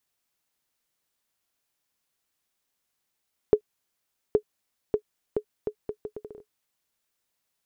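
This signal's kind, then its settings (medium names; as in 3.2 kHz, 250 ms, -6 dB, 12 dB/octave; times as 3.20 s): bouncing ball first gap 0.82 s, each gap 0.72, 423 Hz, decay 79 ms -7 dBFS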